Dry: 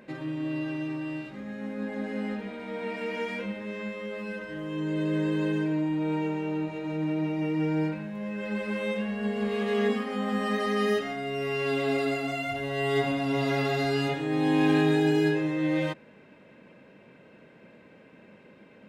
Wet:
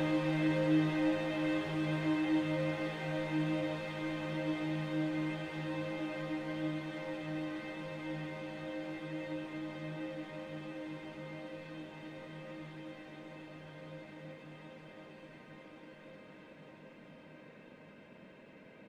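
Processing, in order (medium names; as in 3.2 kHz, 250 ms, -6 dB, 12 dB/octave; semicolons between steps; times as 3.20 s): Chebyshev shaper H 8 -24 dB, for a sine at -12 dBFS; delay 310 ms -9 dB; Paulstretch 28×, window 1.00 s, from 15.92 s; trim -3.5 dB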